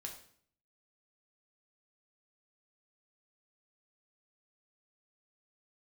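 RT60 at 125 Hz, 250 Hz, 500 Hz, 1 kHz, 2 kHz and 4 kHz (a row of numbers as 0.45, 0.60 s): 0.80, 0.70, 0.60, 0.55, 0.55, 0.50 s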